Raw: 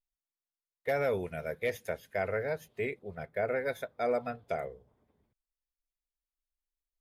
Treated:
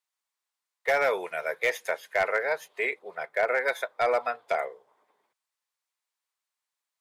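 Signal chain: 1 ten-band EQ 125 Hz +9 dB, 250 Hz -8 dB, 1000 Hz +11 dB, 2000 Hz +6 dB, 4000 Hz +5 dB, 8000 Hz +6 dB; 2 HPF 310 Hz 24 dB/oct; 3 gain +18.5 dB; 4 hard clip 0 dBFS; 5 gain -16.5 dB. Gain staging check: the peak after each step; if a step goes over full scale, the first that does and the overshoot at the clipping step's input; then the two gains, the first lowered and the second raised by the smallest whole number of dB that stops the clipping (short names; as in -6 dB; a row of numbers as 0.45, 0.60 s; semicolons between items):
-13.5, -13.5, +5.0, 0.0, -16.5 dBFS; step 3, 5.0 dB; step 3 +13.5 dB, step 5 -11.5 dB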